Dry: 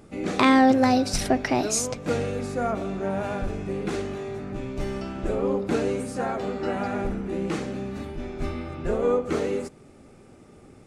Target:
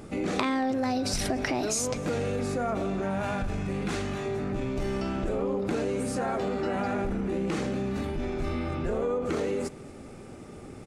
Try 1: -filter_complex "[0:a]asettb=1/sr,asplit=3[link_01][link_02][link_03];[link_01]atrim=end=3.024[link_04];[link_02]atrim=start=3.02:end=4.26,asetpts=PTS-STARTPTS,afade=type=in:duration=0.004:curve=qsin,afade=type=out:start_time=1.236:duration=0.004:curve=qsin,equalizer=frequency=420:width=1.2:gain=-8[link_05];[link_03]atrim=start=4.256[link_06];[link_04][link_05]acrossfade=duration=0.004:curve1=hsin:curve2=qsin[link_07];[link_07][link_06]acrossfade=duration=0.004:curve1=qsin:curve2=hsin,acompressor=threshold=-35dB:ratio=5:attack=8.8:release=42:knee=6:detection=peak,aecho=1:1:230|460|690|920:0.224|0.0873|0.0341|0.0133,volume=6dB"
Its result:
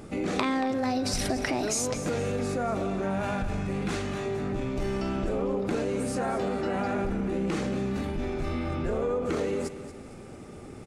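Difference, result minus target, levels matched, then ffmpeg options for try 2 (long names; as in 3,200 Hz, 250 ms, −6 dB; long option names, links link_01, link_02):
echo-to-direct +11 dB
-filter_complex "[0:a]asettb=1/sr,asplit=3[link_01][link_02][link_03];[link_01]atrim=end=3.024[link_04];[link_02]atrim=start=3.02:end=4.26,asetpts=PTS-STARTPTS,afade=type=in:duration=0.004:curve=qsin,afade=type=out:start_time=1.236:duration=0.004:curve=qsin,equalizer=frequency=420:width=1.2:gain=-8[link_05];[link_03]atrim=start=4.256[link_06];[link_04][link_05]acrossfade=duration=0.004:curve1=hsin:curve2=qsin[link_07];[link_07][link_06]acrossfade=duration=0.004:curve1=qsin:curve2=hsin,acompressor=threshold=-35dB:ratio=5:attack=8.8:release=42:knee=6:detection=peak,aecho=1:1:230|460:0.0631|0.0246,volume=6dB"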